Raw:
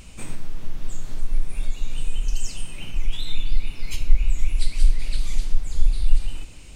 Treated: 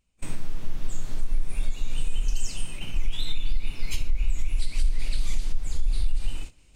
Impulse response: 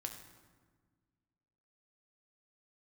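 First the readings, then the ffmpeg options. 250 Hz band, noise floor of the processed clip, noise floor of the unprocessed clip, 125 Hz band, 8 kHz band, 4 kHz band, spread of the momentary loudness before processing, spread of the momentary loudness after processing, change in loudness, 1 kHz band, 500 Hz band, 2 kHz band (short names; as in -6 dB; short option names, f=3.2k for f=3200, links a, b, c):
-1.5 dB, -55 dBFS, -39 dBFS, -3.5 dB, -1.5 dB, -1.5 dB, 13 LU, 8 LU, -3.5 dB, -1.5 dB, -1.5 dB, -1.5 dB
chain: -af "alimiter=limit=-13.5dB:level=0:latency=1:release=96,agate=range=-31dB:threshold=-29dB:ratio=16:detection=peak,areverse,acompressor=mode=upward:threshold=-40dB:ratio=2.5,areverse"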